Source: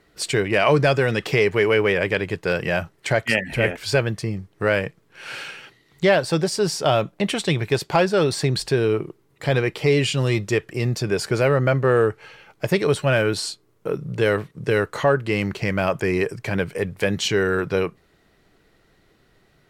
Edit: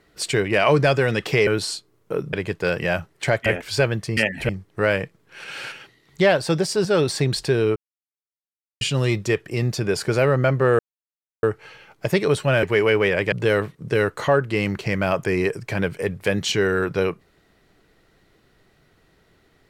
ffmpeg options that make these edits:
-filter_complex "[0:a]asplit=14[s0][s1][s2][s3][s4][s5][s6][s7][s8][s9][s10][s11][s12][s13];[s0]atrim=end=1.472[s14];[s1]atrim=start=13.218:end=14.082[s15];[s2]atrim=start=2.158:end=3.292[s16];[s3]atrim=start=3.608:end=4.322[s17];[s4]atrim=start=3.288:end=3.612[s18];[s5]atrim=start=4.318:end=5.272[s19];[s6]atrim=start=5.268:end=5.552,asetpts=PTS-STARTPTS,areverse[s20];[s7]atrim=start=5.548:end=6.682[s21];[s8]atrim=start=8.078:end=8.99,asetpts=PTS-STARTPTS,afade=t=out:st=0.908:d=0.004:c=hsin[s22];[s9]atrim=start=8.99:end=10.04,asetpts=PTS-STARTPTS,volume=0[s23];[s10]atrim=start=10.04:end=12.02,asetpts=PTS-STARTPTS,afade=t=in:d=0.004:c=hsin,afade=t=out:st=1.976:d=0.004:c=hsin,apad=pad_dur=0.64[s24];[s11]atrim=start=12.02:end=13.222,asetpts=PTS-STARTPTS,afade=t=in:d=0.004:c=hsin[s25];[s12]atrim=start=1.468:end=2.162[s26];[s13]atrim=start=14.078[s27];[s14][s15]acrossfade=d=0.004:c1=hsin:c2=hsin[s28];[s28][s16]acrossfade=d=0.004:c1=hsin:c2=hsin[s29];[s29][s17]acrossfade=d=0.004:c1=hsin:c2=hsin[s30];[s30][s18]acrossfade=d=0.004:c1=hsin:c2=hsin[s31];[s31][s19]acrossfade=d=0.004:c1=hsin:c2=hsin[s32];[s32][s20]acrossfade=d=0.004:c1=hsin:c2=hsin[s33];[s33][s21]acrossfade=d=0.004:c1=hsin:c2=hsin[s34];[s22][s23][s24][s25]concat=n=4:v=0:a=1[s35];[s34][s35]acrossfade=d=0.004:c1=hsin:c2=hsin[s36];[s36][s26]acrossfade=d=0.004:c1=hsin:c2=hsin[s37];[s37][s27]acrossfade=d=0.004:c1=hsin:c2=hsin"

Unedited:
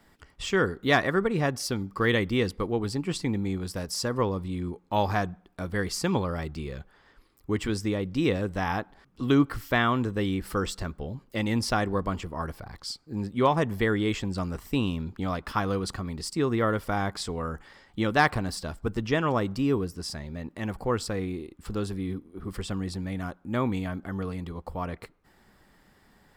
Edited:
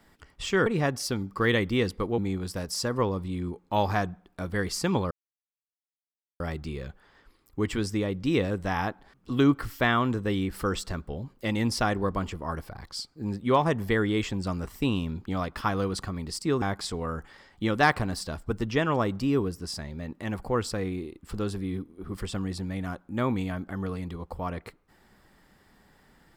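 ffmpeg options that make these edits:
-filter_complex "[0:a]asplit=5[s0][s1][s2][s3][s4];[s0]atrim=end=0.662[s5];[s1]atrim=start=1.258:end=2.782[s6];[s2]atrim=start=3.378:end=6.31,asetpts=PTS-STARTPTS,afade=t=out:st=2.928:d=0.004:c=hsin,apad=pad_dur=1.29[s7];[s3]atrim=start=6.31:end=16.532,asetpts=PTS-STARTPTS,afade=t=in:d=0.004:c=hsin[s8];[s4]atrim=start=16.978[s9];[s5][s6]acrossfade=d=0.004:c1=hsin:c2=hsin[s10];[s7][s8]concat=n=2:v=0:a=1[s11];[s10][s11]acrossfade=d=0.004:c1=hsin:c2=hsin[s12];[s12][s9]acrossfade=d=0.004:c1=hsin:c2=hsin"

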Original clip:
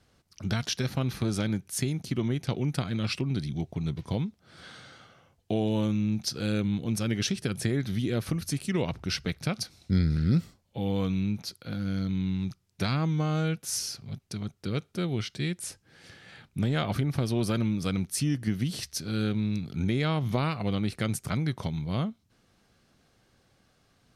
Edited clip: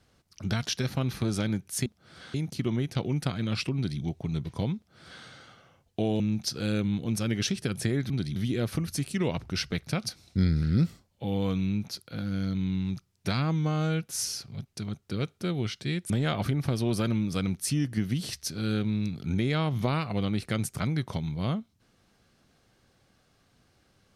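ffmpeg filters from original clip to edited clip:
-filter_complex "[0:a]asplit=7[s0][s1][s2][s3][s4][s5][s6];[s0]atrim=end=1.862[s7];[s1]atrim=start=4.278:end=4.762[s8];[s2]atrim=start=1.858:end=5.722[s9];[s3]atrim=start=5.998:end=7.902[s10];[s4]atrim=start=3.268:end=3.532[s11];[s5]atrim=start=7.898:end=15.642[s12];[s6]atrim=start=16.598[s13];[s7][s8]acrossfade=d=0.004:c1=hsin:c2=hsin[s14];[s14][s9]acrossfade=d=0.004:c1=hsin:c2=hsin[s15];[s15][s10]acrossfade=d=0.004:c1=hsin:c2=hsin[s16];[s16][s11]acrossfade=d=0.004:c1=hsin:c2=hsin[s17];[s17][s12]acrossfade=d=0.004:c1=hsin:c2=hsin[s18];[s18][s13]acrossfade=d=0.004:c1=hsin:c2=hsin"

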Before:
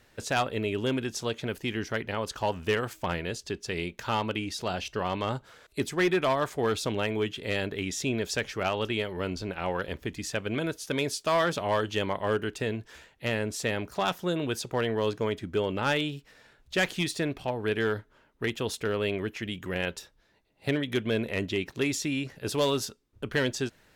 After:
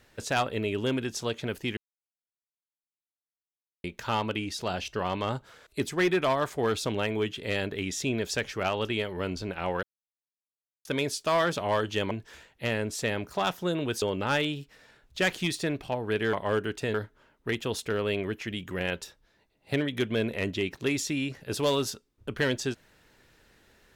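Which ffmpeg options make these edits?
-filter_complex "[0:a]asplit=9[s0][s1][s2][s3][s4][s5][s6][s7][s8];[s0]atrim=end=1.77,asetpts=PTS-STARTPTS,afade=t=out:st=1.766:d=0.004:c=hsin[s9];[s1]atrim=start=1.77:end=3.84,asetpts=PTS-STARTPTS,volume=0[s10];[s2]atrim=start=3.84:end=9.83,asetpts=PTS-STARTPTS,afade=t=in:d=0.004:c=hsin,afade=t=out:st=5.986:d=0.004:c=hsin[s11];[s3]atrim=start=9.83:end=10.85,asetpts=PTS-STARTPTS,volume=0[s12];[s4]atrim=start=10.85:end=12.112,asetpts=PTS-STARTPTS,afade=t=in:d=0.004:c=hsin[s13];[s5]atrim=start=12.718:end=14.632[s14];[s6]atrim=start=15.578:end=17.892[s15];[s7]atrim=start=12.108:end=12.722[s16];[s8]atrim=start=17.888[s17];[s9][s10][s11][s12][s13]concat=n=5:v=0:a=1[s18];[s18][s14]acrossfade=d=0.004:c1=hsin:c2=hsin[s19];[s19][s15]acrossfade=d=0.004:c1=hsin:c2=hsin[s20];[s20][s16]acrossfade=d=0.004:c1=hsin:c2=hsin[s21];[s21][s17]acrossfade=d=0.004:c1=hsin:c2=hsin"

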